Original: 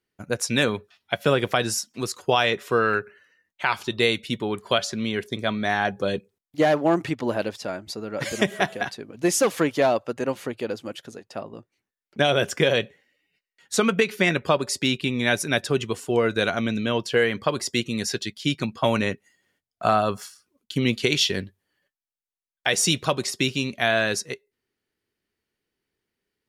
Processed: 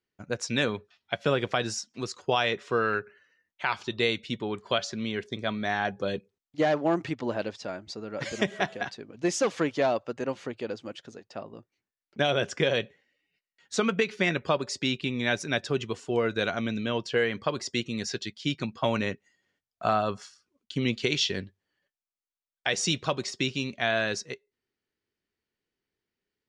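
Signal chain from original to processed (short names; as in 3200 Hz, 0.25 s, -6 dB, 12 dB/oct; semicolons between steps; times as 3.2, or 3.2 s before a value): LPF 7000 Hz 24 dB/oct; gain -5 dB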